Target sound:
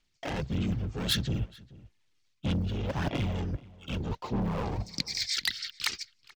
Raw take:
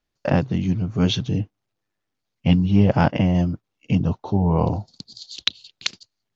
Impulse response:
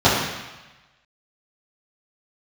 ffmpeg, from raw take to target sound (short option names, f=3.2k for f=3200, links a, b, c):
-filter_complex "[0:a]acrossover=split=1700[a][b];[a]adynamicsmooth=sensitivity=7.5:basefreq=540[c];[c][b]amix=inputs=2:normalize=0,lowpass=5.2k,equalizer=f=2.1k:w=0.9:g=5.5,alimiter=limit=-9dB:level=0:latency=1:release=31,asplit=3[d][e][f];[e]asetrate=22050,aresample=44100,atempo=2,volume=-4dB[g];[f]asetrate=52444,aresample=44100,atempo=0.840896,volume=-3dB[h];[d][g][h]amix=inputs=3:normalize=0,asoftclip=type=tanh:threshold=-16.5dB,areverse,acompressor=threshold=-29dB:ratio=10,areverse,aphaser=in_gain=1:out_gain=1:delay=2.5:decay=0.38:speed=1.6:type=sinusoidal,aemphasis=mode=production:type=75kf,asplit=2[i][j];[j]adelay=431.5,volume=-21dB,highshelf=f=4k:g=-9.71[k];[i][k]amix=inputs=2:normalize=0,volume=-1.5dB"